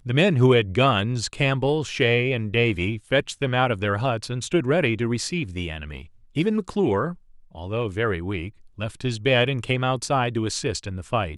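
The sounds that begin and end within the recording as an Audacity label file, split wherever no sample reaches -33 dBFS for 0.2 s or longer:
6.360000	7.130000	sound
7.550000	8.490000	sound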